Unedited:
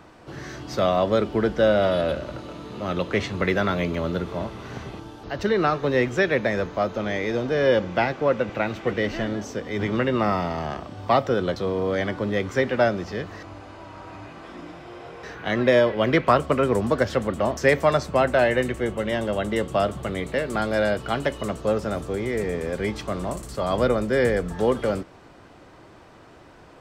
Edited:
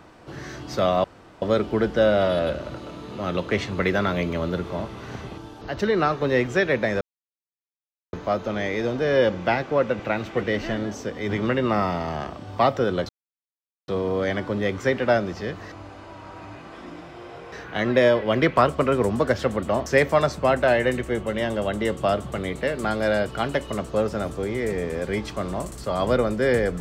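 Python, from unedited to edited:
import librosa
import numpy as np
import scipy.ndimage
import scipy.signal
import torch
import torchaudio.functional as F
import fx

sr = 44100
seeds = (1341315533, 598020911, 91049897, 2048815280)

y = fx.edit(x, sr, fx.insert_room_tone(at_s=1.04, length_s=0.38),
    fx.insert_silence(at_s=6.63, length_s=1.12),
    fx.insert_silence(at_s=11.59, length_s=0.79), tone=tone)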